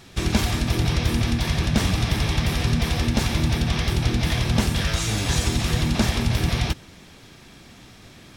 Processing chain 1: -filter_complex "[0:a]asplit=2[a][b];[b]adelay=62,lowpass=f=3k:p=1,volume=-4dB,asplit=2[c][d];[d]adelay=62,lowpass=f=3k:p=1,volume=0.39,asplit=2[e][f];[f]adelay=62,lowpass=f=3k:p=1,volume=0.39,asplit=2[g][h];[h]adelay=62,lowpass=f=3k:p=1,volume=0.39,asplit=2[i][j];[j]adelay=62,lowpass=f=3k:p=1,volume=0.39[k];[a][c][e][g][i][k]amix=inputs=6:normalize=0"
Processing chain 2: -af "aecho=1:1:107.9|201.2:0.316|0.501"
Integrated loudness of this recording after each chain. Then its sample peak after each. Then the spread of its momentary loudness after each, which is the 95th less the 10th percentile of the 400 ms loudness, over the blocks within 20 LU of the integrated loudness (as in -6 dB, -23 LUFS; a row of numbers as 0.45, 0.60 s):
-21.5, -21.5 LUFS; -6.5, -6.0 dBFS; 2, 2 LU